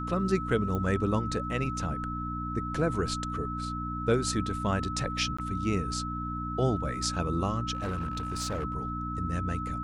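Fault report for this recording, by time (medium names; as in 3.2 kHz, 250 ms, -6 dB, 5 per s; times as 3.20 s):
hum 60 Hz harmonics 5 -36 dBFS
whine 1.3 kHz -35 dBFS
0.75 s: pop -21 dBFS
5.37–5.38 s: dropout 15 ms
7.73–8.65 s: clipped -28 dBFS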